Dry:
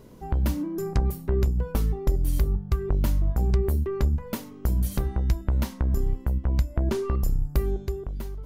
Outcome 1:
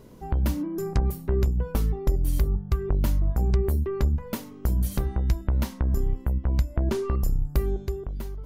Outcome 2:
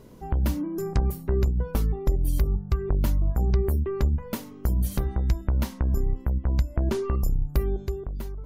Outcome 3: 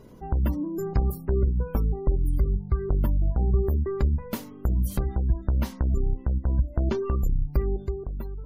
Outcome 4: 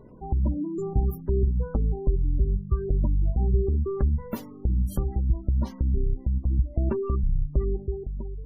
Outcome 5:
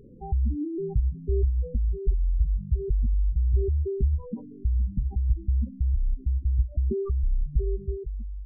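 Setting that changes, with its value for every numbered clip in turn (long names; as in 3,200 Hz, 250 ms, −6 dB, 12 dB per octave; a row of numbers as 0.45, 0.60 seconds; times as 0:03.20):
gate on every frequency bin, under each frame's peak: −60, −50, −35, −25, −10 decibels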